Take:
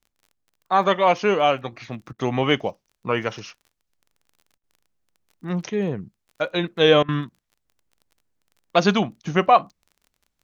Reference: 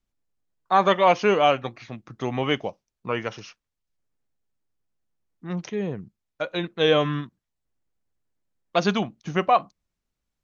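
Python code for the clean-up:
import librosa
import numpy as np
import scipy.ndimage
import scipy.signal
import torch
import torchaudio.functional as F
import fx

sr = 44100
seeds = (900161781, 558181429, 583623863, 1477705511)

y = fx.fix_declick_ar(x, sr, threshold=6.5)
y = fx.fix_interpolate(y, sr, at_s=(2.13, 4.58, 7.03), length_ms=54.0)
y = fx.fix_level(y, sr, at_s=1.72, step_db=-4.0)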